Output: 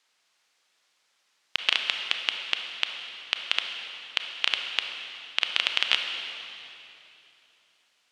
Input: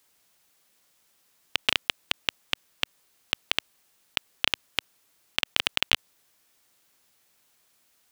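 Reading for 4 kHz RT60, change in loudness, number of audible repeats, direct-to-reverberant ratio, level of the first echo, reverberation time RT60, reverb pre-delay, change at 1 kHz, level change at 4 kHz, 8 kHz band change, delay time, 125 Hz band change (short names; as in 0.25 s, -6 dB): 2.7 s, +1.0 dB, none, 4.0 dB, none, 3.0 s, 27 ms, 0.0 dB, +2.0 dB, -4.0 dB, none, under -10 dB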